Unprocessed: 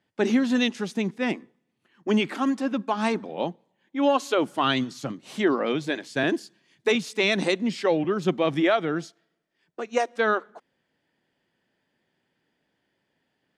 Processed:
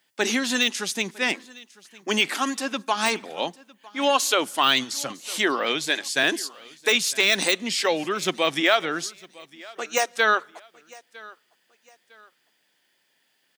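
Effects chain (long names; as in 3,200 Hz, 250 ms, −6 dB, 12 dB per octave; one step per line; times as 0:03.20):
de-essing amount 75%
spectral tilt +4.5 dB per octave
repeating echo 955 ms, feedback 34%, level −22.5 dB
level +3 dB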